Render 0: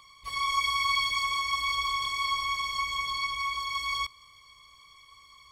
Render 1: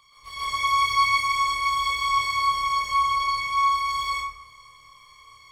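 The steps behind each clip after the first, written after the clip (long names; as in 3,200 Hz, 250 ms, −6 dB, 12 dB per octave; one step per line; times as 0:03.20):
parametric band 260 Hz −6 dB 0.42 octaves
on a send: flutter between parallel walls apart 4.8 metres, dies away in 0.33 s
on the sum: dense smooth reverb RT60 0.73 s, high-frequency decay 0.45×, pre-delay 115 ms, DRR −8.5 dB
level −4.5 dB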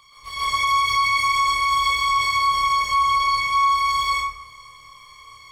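brickwall limiter −18 dBFS, peak gain reduction 7 dB
level +5.5 dB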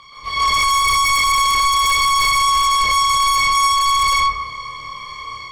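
drawn EQ curve 100 Hz 0 dB, 200 Hz +5 dB, 5,100 Hz −1 dB, 10,000 Hz −13 dB
automatic gain control gain up to 4.5 dB
in parallel at −9 dB: sine wavefolder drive 13 dB, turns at −6 dBFS
on the sum: level −2.5 dB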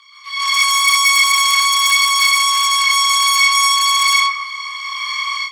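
inverse Chebyshev high-pass filter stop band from 650 Hz, stop band 40 dB
automatic gain control gain up to 15 dB
level −1 dB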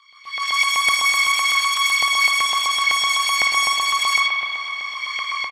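auto-filter high-pass saw up 7.9 Hz 770–2,700 Hz
spring reverb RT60 3.6 s, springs 52 ms, chirp 25 ms, DRR 3.5 dB
downsampling to 32,000 Hz
level −9 dB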